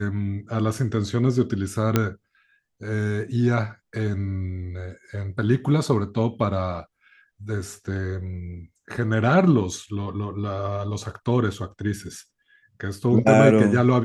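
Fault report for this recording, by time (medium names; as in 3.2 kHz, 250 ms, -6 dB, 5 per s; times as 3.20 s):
1.96 s: pop -5 dBFS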